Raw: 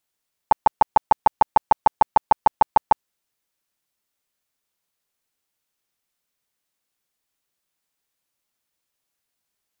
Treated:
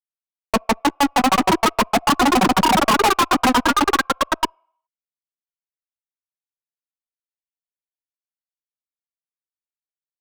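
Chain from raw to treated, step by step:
vocoder with an arpeggio as carrier minor triad, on G3, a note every 376 ms
parametric band 680 Hz −5 dB 1.8 octaves
in parallel at −3 dB: compressor whose output falls as the input rises −22 dBFS, ratio −0.5
on the sum: delay with pitch and tempo change per echo 730 ms, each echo +2 semitones, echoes 3
phase shifter 0.44 Hz, delay 3.9 ms, feedback 62%
fuzz pedal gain 36 dB, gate −43 dBFS
on a send at −20 dB: formant filter a + convolution reverb RT60 0.65 s, pre-delay 3 ms
on the sum: wrong playback speed 25 fps video run at 24 fps

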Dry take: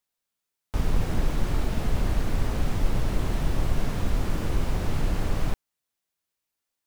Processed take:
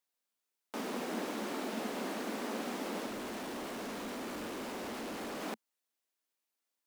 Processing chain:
elliptic high-pass filter 220 Hz, stop band 50 dB
0:03.06–0:05.42: hard clipping −35.5 dBFS, distortion −12 dB
level −2.5 dB

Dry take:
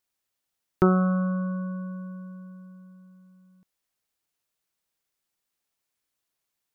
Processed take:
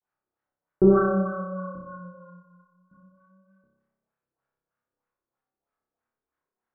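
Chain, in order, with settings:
0:01.77–0:02.90: downward expander −39 dBFS
multi-voice chorus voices 4, 0.84 Hz, delay 18 ms, depth 4.6 ms
auto-filter low-pass sine 3.2 Hz 370–1,500 Hz
pitch vibrato 0.32 Hz 62 cents
flutter between parallel walls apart 5.2 metres, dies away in 0.98 s

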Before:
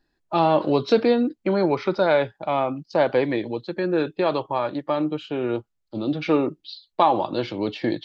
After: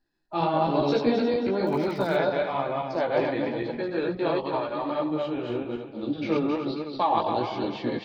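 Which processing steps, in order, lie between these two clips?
feedback delay that plays each chunk backwards 134 ms, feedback 58%, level −0.5 dB
multi-voice chorus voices 2, 1.1 Hz, delay 16 ms, depth 3 ms
0:01.64–0:02.16: surface crackle 63 per second → 320 per second −32 dBFS
level −4 dB

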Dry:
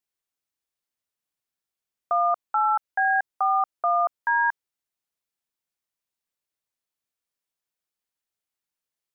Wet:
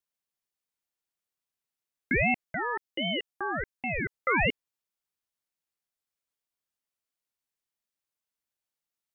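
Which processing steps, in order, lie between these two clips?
0:02.44–0:04.14: parametric band 920 Hz −7.5 dB 1.8 octaves
ring modulator whose carrier an LFO sweeps 910 Hz, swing 60%, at 1.3 Hz

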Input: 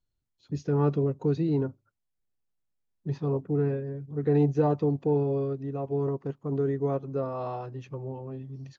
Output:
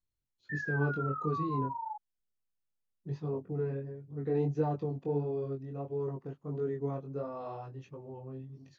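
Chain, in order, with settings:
sound drawn into the spectrogram fall, 0:00.49–0:01.96, 840–1,800 Hz −31 dBFS
chorus effect 1.5 Hz, delay 19 ms, depth 4.2 ms
level −4.5 dB

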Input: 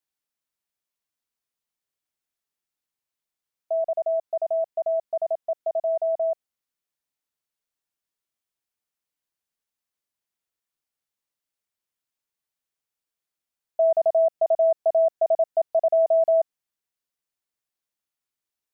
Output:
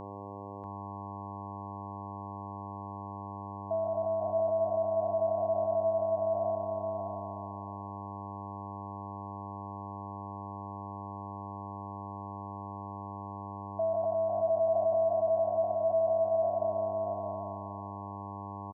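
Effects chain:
peak hold with a decay on every bin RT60 1.96 s
notch comb filter 560 Hz
hum with harmonics 100 Hz, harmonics 11, −38 dBFS −1 dB per octave
brickwall limiter −20.5 dBFS, peak gain reduction 7.5 dB
on a send: single-tap delay 639 ms −4.5 dB
on the sum: level −4.5 dB

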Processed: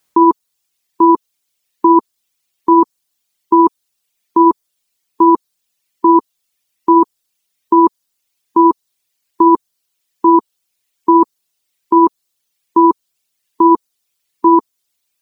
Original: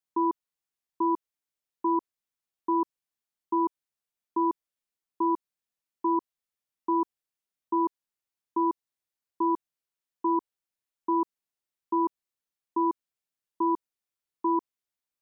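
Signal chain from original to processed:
reverb reduction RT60 1.7 s
boost into a limiter +25 dB
level −1 dB

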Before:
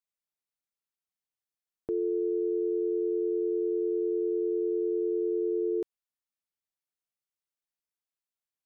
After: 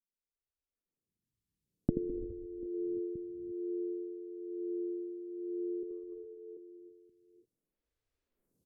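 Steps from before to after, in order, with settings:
camcorder AGC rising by 9.3 dB per second
drawn EQ curve 130 Hz 0 dB, 480 Hz −9 dB, 760 Hz −25 dB
in parallel at −1 dB: downward compressor, threshold −47 dBFS, peak gain reduction 22 dB
0:01.91–0:02.66: on the sum: phaser with its sweep stopped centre 310 Hz, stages 4
on a send: reverse bouncing-ball delay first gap 80 ms, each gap 1.6×, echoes 5
on the sum: reverb whose tail is shaped and stops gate 370 ms rising, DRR 6 dB
treble cut that deepens with the level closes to 320 Hz, closed at −32.5 dBFS
phaser with staggered stages 0.53 Hz
level +2 dB

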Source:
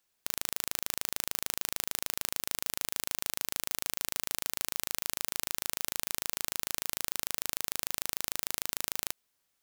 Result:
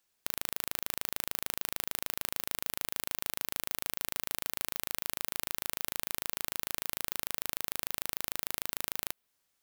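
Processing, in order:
dynamic equaliser 6,600 Hz, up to −6 dB, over −57 dBFS, Q 0.92

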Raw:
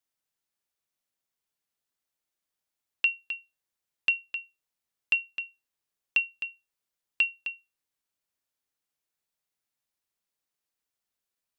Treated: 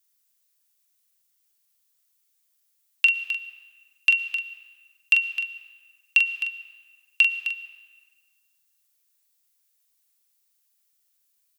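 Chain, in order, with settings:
spectral tilt +4.5 dB per octave
ambience of single reflections 25 ms −18 dB, 43 ms −6.5 dB
comb and all-pass reverb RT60 1.7 s, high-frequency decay 0.75×, pre-delay 75 ms, DRR 14 dB

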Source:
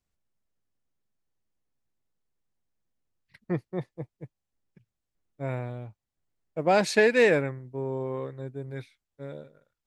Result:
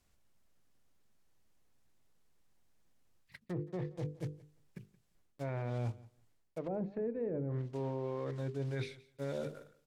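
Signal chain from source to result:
one scale factor per block 5 bits
treble cut that deepens with the level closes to 350 Hz, closed at −21 dBFS
mains-hum notches 50/100/150/200/250/300/350/400/450/500 Hz
reversed playback
downward compressor 5 to 1, threshold −43 dBFS, peak gain reduction 18.5 dB
reversed playback
brickwall limiter −38.5 dBFS, peak gain reduction 7 dB
on a send: repeating echo 173 ms, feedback 16%, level −21 dB
on the sum: level +9.5 dB

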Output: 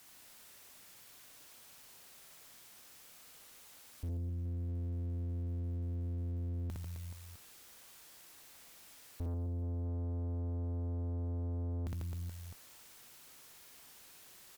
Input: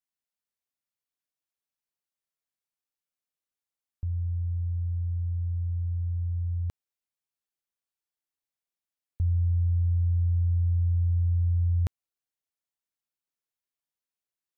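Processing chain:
converter with a step at zero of −47 dBFS
reverse bouncing-ball delay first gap 60 ms, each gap 1.4×, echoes 5
tube saturation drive 35 dB, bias 0.55
level −1 dB

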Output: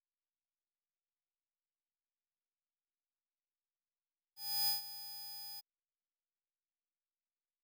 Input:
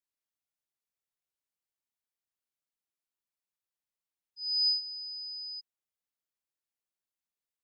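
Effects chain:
gap after every zero crossing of 0.057 ms

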